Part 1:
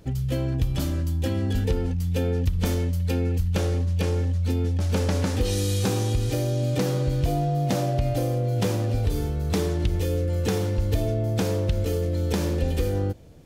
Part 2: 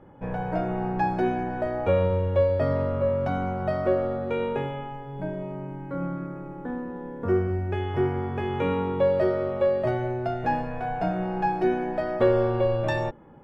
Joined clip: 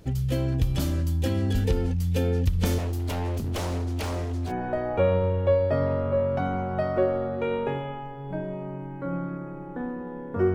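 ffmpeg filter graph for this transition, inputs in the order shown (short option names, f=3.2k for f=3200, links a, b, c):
-filter_complex "[0:a]asettb=1/sr,asplit=3[a][b][c];[a]atrim=end=2.784[d];[b]atrim=start=2.78:end=4.53,asetpts=PTS-STARTPTS,afade=t=in:d=0.004:c=qsin,afade=t=out:st=1.746:d=0.004:c=qsin,aeval=exprs='0.0631*(abs(mod(val(0)/0.0631+3,4)-2)-1)':c=same[e];[c]atrim=start=4.526[f];[d][e]acrossfade=d=0.004:c1=hsin:c2=qsin[g];[g][f]acrossfade=d=0.004:c1=qsin:c2=hsin,apad=whole_dur=10.54,atrim=end=10.54,atrim=end=4.53,asetpts=PTS-STARTPTS[h];[1:a]atrim=start=1.34:end=7.43,asetpts=PTS-STARTPTS[i];[h][i]acrossfade=d=0.08:c1=tri:c2=tri"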